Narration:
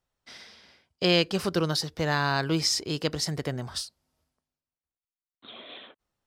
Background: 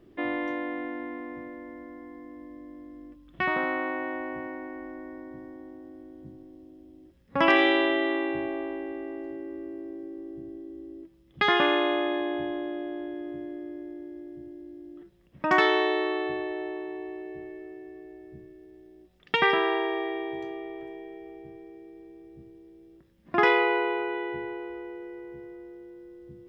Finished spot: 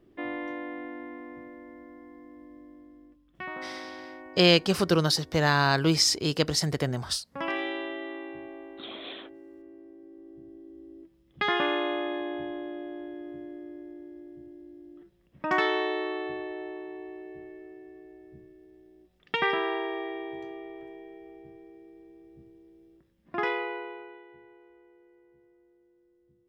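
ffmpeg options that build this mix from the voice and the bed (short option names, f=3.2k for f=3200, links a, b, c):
-filter_complex "[0:a]adelay=3350,volume=3dB[a];[1:a]volume=2.5dB,afade=t=out:st=2.58:d=0.71:silence=0.473151,afade=t=in:st=9.97:d=1.18:silence=0.446684,afade=t=out:st=22.82:d=1.43:silence=0.16788[b];[a][b]amix=inputs=2:normalize=0"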